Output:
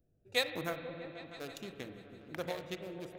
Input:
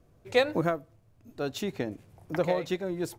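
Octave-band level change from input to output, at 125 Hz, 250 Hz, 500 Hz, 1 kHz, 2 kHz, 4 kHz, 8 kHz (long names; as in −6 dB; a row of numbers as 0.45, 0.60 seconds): −11.5, −12.0, −11.5, −10.0, −5.0, −1.0, −4.0 decibels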